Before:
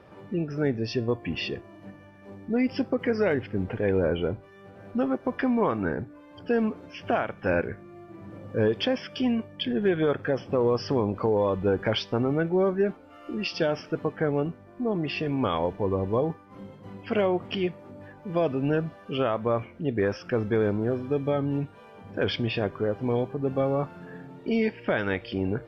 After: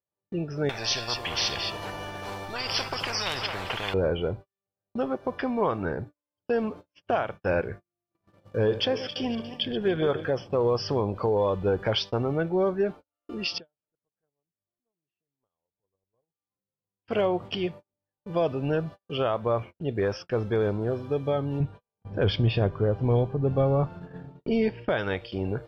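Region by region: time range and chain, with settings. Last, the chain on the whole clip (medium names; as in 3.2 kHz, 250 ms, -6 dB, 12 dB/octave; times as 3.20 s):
0.69–3.94 s: delay 218 ms -19.5 dB + spectrum-flattening compressor 10:1
8.11–10.31 s: backward echo that repeats 143 ms, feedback 49%, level -11.5 dB + tape noise reduction on one side only encoder only
13.58–17.05 s: compression 3:1, threshold -46 dBFS + distance through air 340 m
21.60–24.89 s: low-pass 3.6 kHz 6 dB/octave + bass shelf 190 Hz +11.5 dB
whole clip: gate -37 dBFS, range -45 dB; graphic EQ 250/2000/4000 Hz -7/-6/+4 dB; trim +1.5 dB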